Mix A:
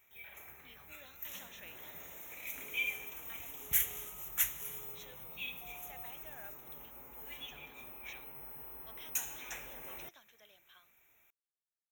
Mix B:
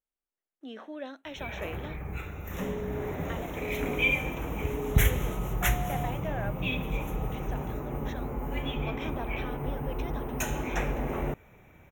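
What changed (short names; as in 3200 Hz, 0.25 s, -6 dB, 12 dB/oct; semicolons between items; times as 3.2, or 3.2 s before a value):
first sound: entry +1.25 s; master: remove pre-emphasis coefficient 0.97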